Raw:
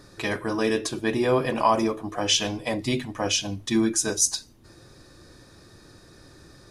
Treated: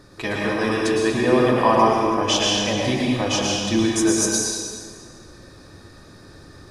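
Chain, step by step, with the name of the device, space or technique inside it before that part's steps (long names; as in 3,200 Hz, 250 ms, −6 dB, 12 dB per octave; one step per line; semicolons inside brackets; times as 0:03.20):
swimming-pool hall (convolution reverb RT60 2.0 s, pre-delay 99 ms, DRR −3.5 dB; high-shelf EQ 4,400 Hz −5 dB)
level +1.5 dB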